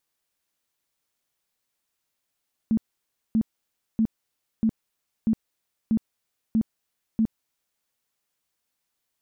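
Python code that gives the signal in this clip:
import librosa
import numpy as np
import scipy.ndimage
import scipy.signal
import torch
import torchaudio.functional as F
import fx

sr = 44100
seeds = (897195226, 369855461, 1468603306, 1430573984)

y = fx.tone_burst(sr, hz=222.0, cycles=14, every_s=0.64, bursts=8, level_db=-17.5)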